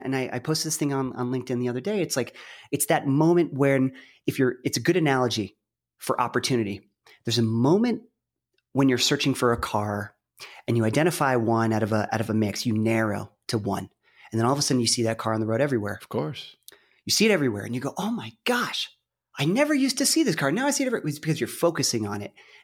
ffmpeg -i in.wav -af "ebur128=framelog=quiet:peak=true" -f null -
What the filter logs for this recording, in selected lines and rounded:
Integrated loudness:
  I:         -24.6 LUFS
  Threshold: -35.1 LUFS
Loudness range:
  LRA:         2.3 LU
  Threshold: -45.0 LUFS
  LRA low:   -26.2 LUFS
  LRA high:  -23.9 LUFS
True peak:
  Peak:       -9.0 dBFS